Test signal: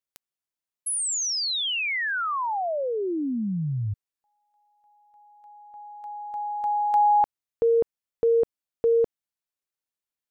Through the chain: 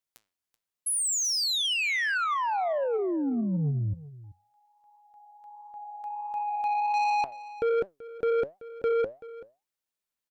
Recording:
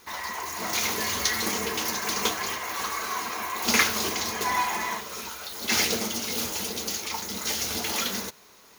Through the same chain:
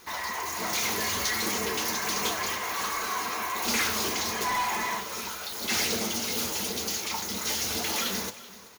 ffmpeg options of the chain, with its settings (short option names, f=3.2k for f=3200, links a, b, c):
-af "acontrast=53,flanger=delay=4.9:depth=7.2:regen=82:speed=1.4:shape=triangular,asoftclip=type=tanh:threshold=-23dB,aecho=1:1:382:0.133"